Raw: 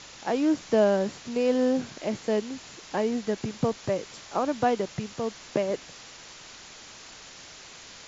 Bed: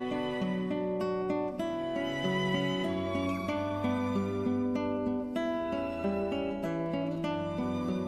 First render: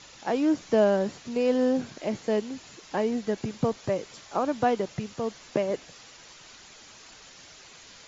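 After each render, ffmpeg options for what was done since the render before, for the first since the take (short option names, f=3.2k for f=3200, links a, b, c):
-af "afftdn=nr=6:nf=-47"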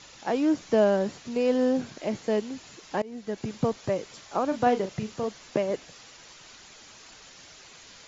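-filter_complex "[0:a]asettb=1/sr,asplit=3[a][b][c];[a]atrim=end=4.484[d];[b]atrim=start=4.48:end=5.28,asetpts=PTS-STARTPTS,afade=t=in:d=0.004:c=qsin,afade=t=out:st=0.796:d=0.004:c=qsin,asplit=2[e][f];[f]adelay=37,volume=-9dB[g];[e][g]amix=inputs=2:normalize=0,atrim=end_sample=35280[h];[c]atrim=start=5.276[i];[d][h]acrossfade=d=0.004:c1=hsin:c2=qsin[j];[j][i]acrossfade=d=0.004:c1=qsin:c2=hsin,asplit=2[k][l];[k]atrim=end=3.02,asetpts=PTS-STARTPTS,afade=t=out:st=3.016:d=0.004:c=hsin:silence=0.0794328[m];[l]atrim=start=3.02,asetpts=PTS-STARTPTS,afade=t=in:d=0.5:silence=0.0794328[n];[m][n]concat=n=2:v=0:a=1"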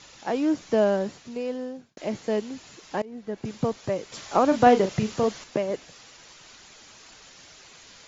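-filter_complex "[0:a]asettb=1/sr,asplit=3[a][b][c];[a]atrim=end=3.054[d];[b]atrim=start=3.05:end=3.45,asetpts=PTS-STARTPTS,afade=t=in:d=0.004:c=qsin,afade=t=out:st=0.396:d=0.004:c=qsin,highshelf=f=3.2k:g=-10.5[e];[c]atrim=start=3.446[f];[d][e]acrossfade=d=0.004:c1=hsin:c2=qsin[g];[g][f]acrossfade=d=0.004:c1=qsin:c2=hsin,asettb=1/sr,asplit=3[h][i][j];[h]atrim=end=4.124[k];[i]atrim=start=4.12:end=5.44,asetpts=PTS-STARTPTS,afade=t=in:d=0.004:c=qsin,afade=t=out:st=1.316:d=0.004:c=qsin,acontrast=75[l];[j]atrim=start=5.436[m];[k][l]acrossfade=d=0.004:c1=hsin:c2=qsin[n];[n][m]acrossfade=d=0.004:c1=qsin:c2=hsin,asplit=2[o][p];[o]atrim=end=1.97,asetpts=PTS-STARTPTS,afade=t=out:st=0.92:d=1.05[q];[p]atrim=start=1.97,asetpts=PTS-STARTPTS,afade=t=in:d=0.004:c=hsin[r];[q][r]concat=n=2:v=0:a=1"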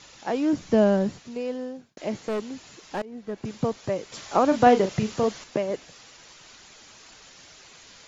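-filter_complex "[0:a]asettb=1/sr,asplit=3[a][b][c];[a]atrim=end=0.534[d];[b]atrim=start=0.53:end=1.19,asetpts=PTS-STARTPTS,afade=t=in:d=0.004:c=qsin,afade=t=out:st=0.656:d=0.004:c=qsin,bass=f=250:g=10,treble=f=4k:g=0[e];[c]atrim=start=1.186[f];[d][e]acrossfade=d=0.004:c1=hsin:c2=qsin[g];[g][f]acrossfade=d=0.004:c1=qsin:c2=hsin,asettb=1/sr,asplit=3[h][i][j];[h]atrim=end=2.284[k];[i]atrim=start=2.28:end=3.54,asetpts=PTS-STARTPTS,afade=t=in:d=0.004:c=qsin,afade=t=out:st=1.256:d=0.004:c=qsin,asoftclip=type=hard:threshold=-24.5dB[l];[j]atrim=start=3.536[m];[k][l]acrossfade=d=0.004:c1=hsin:c2=qsin[n];[n][m]acrossfade=d=0.004:c1=qsin:c2=hsin"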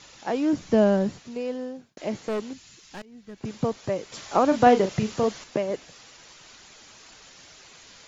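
-filter_complex "[0:a]asettb=1/sr,asplit=3[a][b][c];[a]atrim=end=2.534[d];[b]atrim=start=2.53:end=3.41,asetpts=PTS-STARTPTS,afade=t=in:d=0.004:c=qsin,afade=t=out:st=0.876:d=0.004:c=qsin,equalizer=f=580:w=0.43:g=-13[e];[c]atrim=start=3.406[f];[d][e]acrossfade=d=0.004:c1=hsin:c2=qsin[g];[g][f]acrossfade=d=0.004:c1=qsin:c2=hsin"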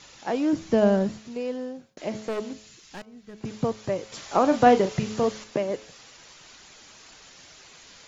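-af "bandreject=f=107.7:t=h:w=4,bandreject=f=215.4:t=h:w=4,bandreject=f=323.1:t=h:w=4,bandreject=f=430.8:t=h:w=4,bandreject=f=538.5:t=h:w=4,bandreject=f=646.2:t=h:w=4,bandreject=f=753.9:t=h:w=4,bandreject=f=861.6:t=h:w=4,bandreject=f=969.3:t=h:w=4,bandreject=f=1.077k:t=h:w=4,bandreject=f=1.1847k:t=h:w=4,bandreject=f=1.2924k:t=h:w=4,bandreject=f=1.4001k:t=h:w=4,bandreject=f=1.5078k:t=h:w=4"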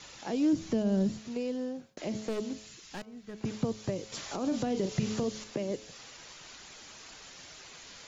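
-filter_complex "[0:a]alimiter=limit=-17.5dB:level=0:latency=1:release=87,acrossover=split=400|3000[a][b][c];[b]acompressor=threshold=-41dB:ratio=6[d];[a][d][c]amix=inputs=3:normalize=0"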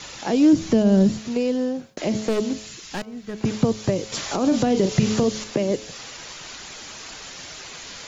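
-af "volume=11.5dB"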